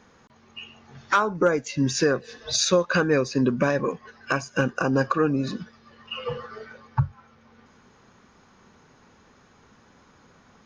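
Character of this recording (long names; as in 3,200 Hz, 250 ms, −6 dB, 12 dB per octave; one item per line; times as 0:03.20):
background noise floor −57 dBFS
spectral slope −4.5 dB per octave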